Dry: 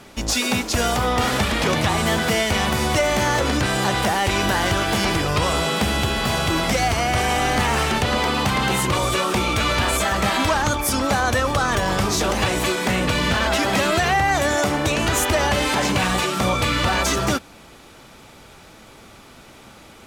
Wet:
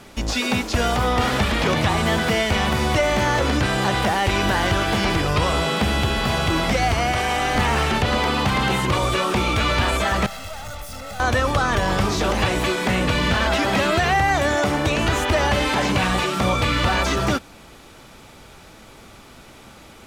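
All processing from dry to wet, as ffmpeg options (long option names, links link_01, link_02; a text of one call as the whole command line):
ffmpeg -i in.wav -filter_complex "[0:a]asettb=1/sr,asplit=3[link_01][link_02][link_03];[link_01]atrim=end=7.124[link_04];[link_02]atrim=start=7.12:end=7.55,asetpts=PTS-STARTPTS,afade=type=in:duration=0.004:curve=qsin,afade=type=out:start_time=0.426:duration=0.004:curve=qsin,lowshelf=frequency=320:gain=-6,aeval=exprs='sgn(val(0))*max(abs(val(0))-0.00266,0)':channel_layout=same[link_05];[link_03]atrim=start=7.546[link_06];[link_04][link_05]acrossfade=duration=0.004:curve1=hsin:curve2=qsin[link_07];[link_07][link_06]acrossfade=duration=0.004:curve1=qsin:curve2=hsin,asettb=1/sr,asplit=3[link_08][link_09][link_10];[link_08]atrim=end=10.264[link_11];[link_09]atrim=start=10.26:end=11.2,asetpts=PTS-STARTPTS,afade=type=in:duration=0.004:curve=qsin,afade=type=out:start_time=0.936:duration=0.004:curve=qsin,aeval=exprs='(tanh(63.1*val(0)+0.2)-tanh(0.2))/63.1':channel_layout=same,aecho=1:1:1.5:0.83,atrim=end_sample=41454[link_12];[link_10]atrim=start=11.196[link_13];[link_11][link_12]acrossfade=duration=0.004:curve1=hsin:curve2=qsin[link_14];[link_14][link_13]acrossfade=duration=0.004:curve1=qsin:curve2=hsin,acrossover=split=4700[link_15][link_16];[link_16]acompressor=threshold=-36dB:ratio=4:attack=1:release=60[link_17];[link_15][link_17]amix=inputs=2:normalize=0,lowshelf=frequency=63:gain=5" out.wav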